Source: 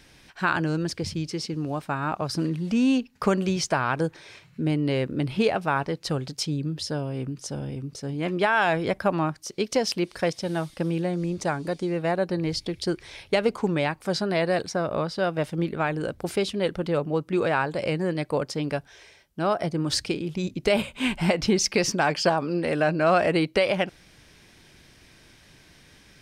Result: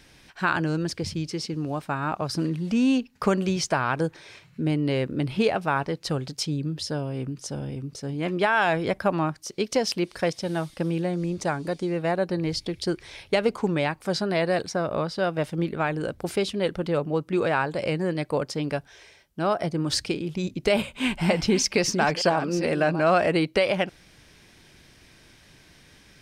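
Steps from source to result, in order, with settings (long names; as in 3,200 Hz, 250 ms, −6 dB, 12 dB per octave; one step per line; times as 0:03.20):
0:20.86–0:23.01: delay that plays each chunk backwards 452 ms, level −10.5 dB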